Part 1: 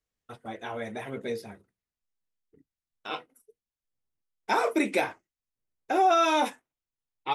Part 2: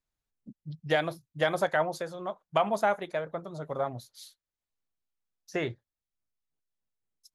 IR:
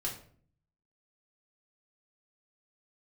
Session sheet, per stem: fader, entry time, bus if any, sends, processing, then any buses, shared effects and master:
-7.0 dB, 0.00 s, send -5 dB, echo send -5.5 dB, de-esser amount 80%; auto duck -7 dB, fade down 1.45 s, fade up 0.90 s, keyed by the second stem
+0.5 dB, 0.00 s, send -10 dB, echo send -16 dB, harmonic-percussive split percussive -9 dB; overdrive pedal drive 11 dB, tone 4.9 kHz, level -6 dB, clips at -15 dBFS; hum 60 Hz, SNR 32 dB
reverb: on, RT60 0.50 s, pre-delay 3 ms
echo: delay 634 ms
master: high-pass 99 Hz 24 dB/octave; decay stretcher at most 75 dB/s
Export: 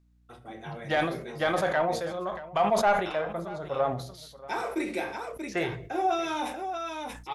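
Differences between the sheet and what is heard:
stem 1: missing de-esser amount 80%; master: missing high-pass 99 Hz 24 dB/octave

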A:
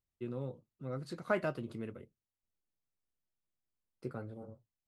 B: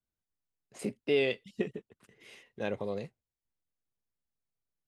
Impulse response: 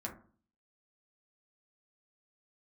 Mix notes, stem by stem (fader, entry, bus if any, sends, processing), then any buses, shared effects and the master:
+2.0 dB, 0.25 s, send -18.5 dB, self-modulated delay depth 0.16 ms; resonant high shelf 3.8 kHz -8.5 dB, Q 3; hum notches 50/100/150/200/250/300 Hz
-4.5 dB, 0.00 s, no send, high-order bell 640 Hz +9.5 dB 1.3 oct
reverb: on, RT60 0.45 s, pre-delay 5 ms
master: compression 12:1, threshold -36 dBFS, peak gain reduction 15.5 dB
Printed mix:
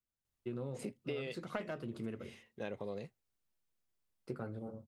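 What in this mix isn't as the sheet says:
stem A: missing resonant high shelf 3.8 kHz -8.5 dB, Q 3; stem B: missing high-order bell 640 Hz +9.5 dB 1.3 oct

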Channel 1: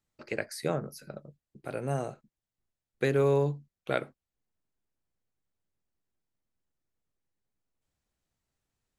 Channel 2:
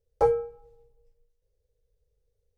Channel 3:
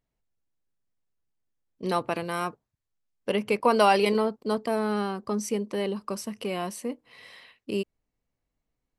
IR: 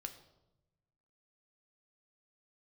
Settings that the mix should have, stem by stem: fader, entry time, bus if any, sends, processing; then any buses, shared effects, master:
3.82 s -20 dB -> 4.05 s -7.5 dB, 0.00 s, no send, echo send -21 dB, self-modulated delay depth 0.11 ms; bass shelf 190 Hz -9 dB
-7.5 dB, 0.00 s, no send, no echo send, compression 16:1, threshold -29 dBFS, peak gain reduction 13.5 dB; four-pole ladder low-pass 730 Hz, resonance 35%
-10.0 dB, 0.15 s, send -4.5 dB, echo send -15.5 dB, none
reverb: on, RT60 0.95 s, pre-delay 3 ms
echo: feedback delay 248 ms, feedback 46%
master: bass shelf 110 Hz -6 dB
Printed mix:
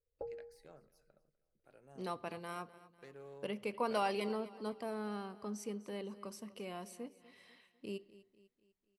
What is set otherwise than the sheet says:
stem 1 -20.0 dB -> -26.0 dB; stem 3 -10.0 dB -> -17.0 dB; master: missing bass shelf 110 Hz -6 dB

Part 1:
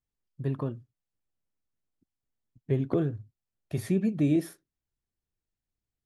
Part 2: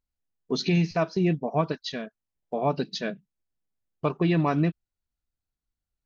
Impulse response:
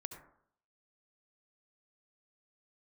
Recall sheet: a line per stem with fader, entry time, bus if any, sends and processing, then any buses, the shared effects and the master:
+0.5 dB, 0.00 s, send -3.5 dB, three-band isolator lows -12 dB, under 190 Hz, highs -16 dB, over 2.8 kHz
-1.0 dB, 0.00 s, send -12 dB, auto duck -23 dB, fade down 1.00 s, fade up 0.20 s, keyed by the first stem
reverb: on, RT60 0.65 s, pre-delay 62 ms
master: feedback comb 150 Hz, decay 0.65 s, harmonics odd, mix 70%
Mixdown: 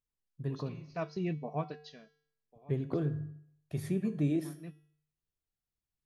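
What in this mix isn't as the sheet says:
stem 1: missing three-band isolator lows -12 dB, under 190 Hz, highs -16 dB, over 2.8 kHz; stem 2: send off

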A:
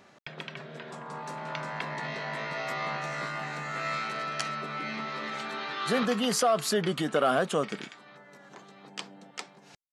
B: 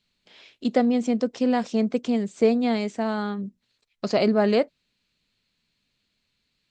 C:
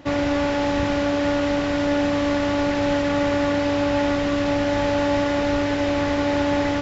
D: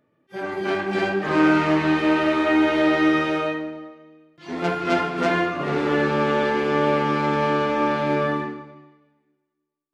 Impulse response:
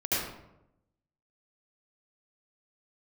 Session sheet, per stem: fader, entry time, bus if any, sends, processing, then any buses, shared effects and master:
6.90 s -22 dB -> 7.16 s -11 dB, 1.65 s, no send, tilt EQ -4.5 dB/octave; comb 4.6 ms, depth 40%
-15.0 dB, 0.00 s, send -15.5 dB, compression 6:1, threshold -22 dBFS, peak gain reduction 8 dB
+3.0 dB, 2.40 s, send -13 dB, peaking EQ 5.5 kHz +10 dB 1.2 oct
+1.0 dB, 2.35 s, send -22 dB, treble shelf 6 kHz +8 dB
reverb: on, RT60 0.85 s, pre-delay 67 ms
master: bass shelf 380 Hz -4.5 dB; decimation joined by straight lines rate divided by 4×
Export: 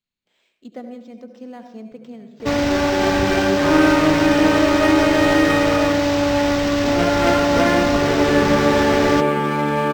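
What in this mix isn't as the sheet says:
stem B: missing compression 6:1, threshold -22 dBFS, peak gain reduction 8 dB; stem C: send off; master: missing bass shelf 380 Hz -4.5 dB

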